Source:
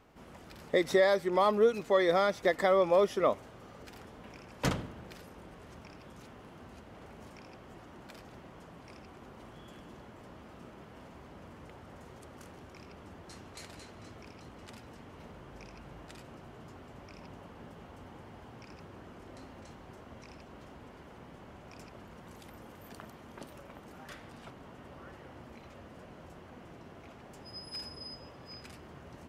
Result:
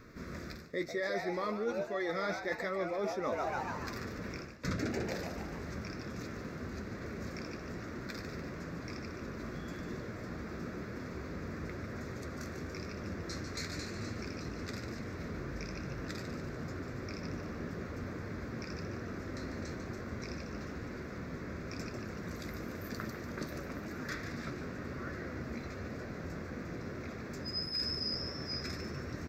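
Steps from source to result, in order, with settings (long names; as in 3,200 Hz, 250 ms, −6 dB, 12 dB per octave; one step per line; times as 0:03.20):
phaser with its sweep stopped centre 3,000 Hz, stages 6
echo with shifted repeats 146 ms, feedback 51%, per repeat +130 Hz, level −8.5 dB
flanger 1 Hz, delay 8 ms, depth 6.2 ms, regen −54%
reversed playback
downward compressor 20 to 1, threshold −46 dBFS, peak gain reduction 20 dB
reversed playback
level +14.5 dB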